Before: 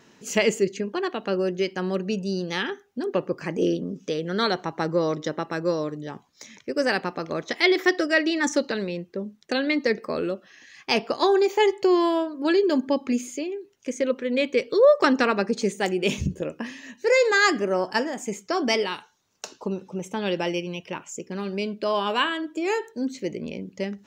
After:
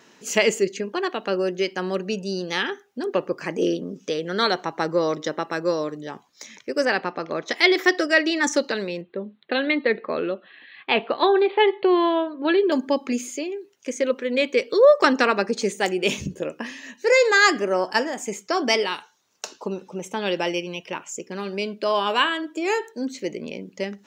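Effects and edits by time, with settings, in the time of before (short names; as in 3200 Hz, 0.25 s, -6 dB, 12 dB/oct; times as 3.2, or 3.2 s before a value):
6.85–7.46 air absorption 120 m
9.01–12.72 steep low-pass 4100 Hz 96 dB/oct
whole clip: HPF 340 Hz 6 dB/oct; gain +3.5 dB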